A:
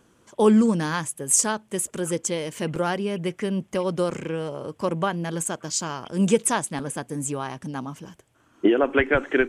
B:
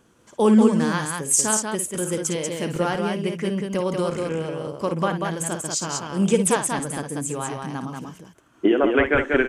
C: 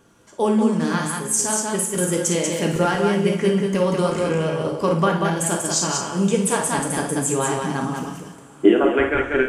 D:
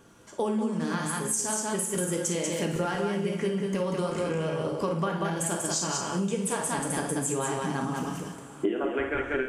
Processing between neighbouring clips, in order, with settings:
loudspeakers that aren't time-aligned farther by 19 metres −9 dB, 65 metres −4 dB
speech leveller within 5 dB 0.5 s; coupled-rooms reverb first 0.51 s, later 4.8 s, from −22 dB, DRR 2 dB
downward compressor 4 to 1, threshold −27 dBFS, peak gain reduction 16 dB

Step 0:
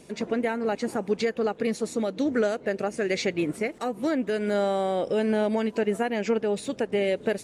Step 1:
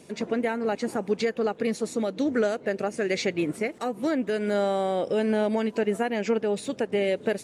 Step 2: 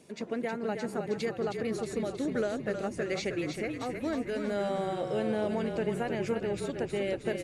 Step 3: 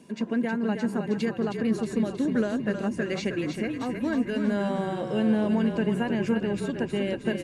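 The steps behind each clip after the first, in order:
high-pass filter 73 Hz
echo with shifted repeats 316 ms, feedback 56%, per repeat −37 Hz, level −6 dB; level −7 dB
hollow resonant body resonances 220/1,000/1,600/2,800 Hz, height 11 dB, ringing for 30 ms

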